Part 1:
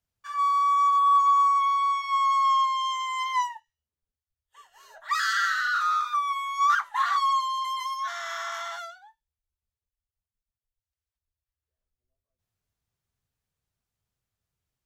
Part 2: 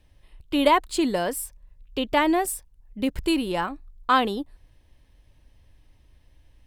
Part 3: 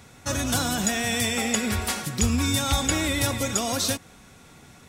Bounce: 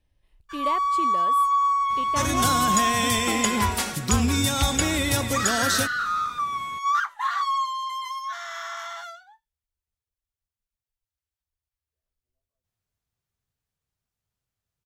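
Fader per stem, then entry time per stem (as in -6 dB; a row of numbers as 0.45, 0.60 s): -1.0, -11.5, +1.0 dB; 0.25, 0.00, 1.90 s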